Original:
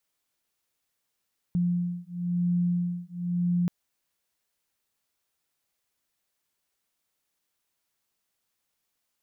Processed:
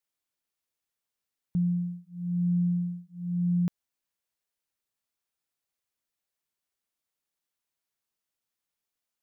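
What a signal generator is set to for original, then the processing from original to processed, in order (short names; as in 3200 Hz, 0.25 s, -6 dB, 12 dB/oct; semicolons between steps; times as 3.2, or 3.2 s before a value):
beating tones 175 Hz, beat 0.98 Hz, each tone -27.5 dBFS 2.13 s
upward expander 1.5:1, over -41 dBFS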